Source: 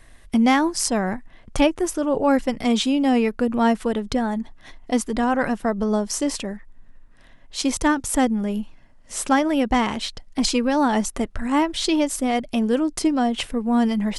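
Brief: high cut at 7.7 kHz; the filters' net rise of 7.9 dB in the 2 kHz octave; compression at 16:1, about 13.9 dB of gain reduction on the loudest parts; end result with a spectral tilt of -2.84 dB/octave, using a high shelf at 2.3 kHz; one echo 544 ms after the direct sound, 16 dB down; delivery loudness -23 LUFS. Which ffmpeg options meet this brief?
-af "lowpass=7700,equalizer=f=2000:t=o:g=7,highshelf=f=2300:g=5.5,acompressor=threshold=0.0562:ratio=16,aecho=1:1:544:0.158,volume=2.11"

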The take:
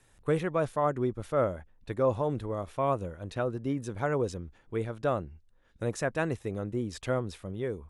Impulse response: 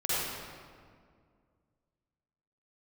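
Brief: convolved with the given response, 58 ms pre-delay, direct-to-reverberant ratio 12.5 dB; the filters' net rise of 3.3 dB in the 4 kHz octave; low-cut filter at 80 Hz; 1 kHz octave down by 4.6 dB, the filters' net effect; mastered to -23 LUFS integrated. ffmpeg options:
-filter_complex "[0:a]highpass=80,equalizer=f=1000:t=o:g=-6.5,equalizer=f=4000:t=o:g=4.5,asplit=2[s0][s1];[1:a]atrim=start_sample=2205,adelay=58[s2];[s1][s2]afir=irnorm=-1:irlink=0,volume=0.0794[s3];[s0][s3]amix=inputs=2:normalize=0,volume=3.16"

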